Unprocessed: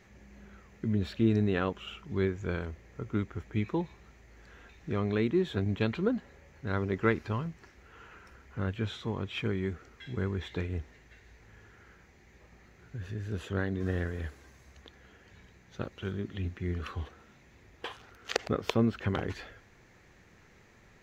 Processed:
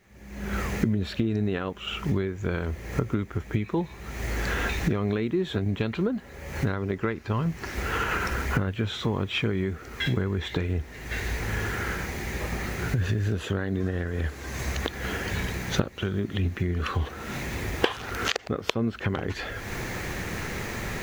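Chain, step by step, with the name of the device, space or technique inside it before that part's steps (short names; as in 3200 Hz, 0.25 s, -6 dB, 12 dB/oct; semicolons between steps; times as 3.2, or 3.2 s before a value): cheap recorder with automatic gain (white noise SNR 40 dB; recorder AGC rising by 50 dB/s); gain -3.5 dB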